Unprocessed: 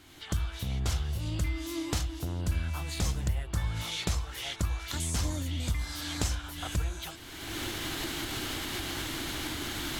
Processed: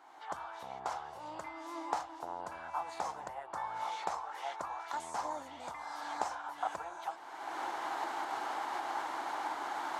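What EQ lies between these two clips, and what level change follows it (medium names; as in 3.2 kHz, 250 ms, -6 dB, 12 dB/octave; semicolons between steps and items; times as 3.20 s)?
resonant high-pass 850 Hz, resonance Q 3.8; tape spacing loss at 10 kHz 21 dB; peaking EQ 3.1 kHz -14 dB 1.7 oct; +4.5 dB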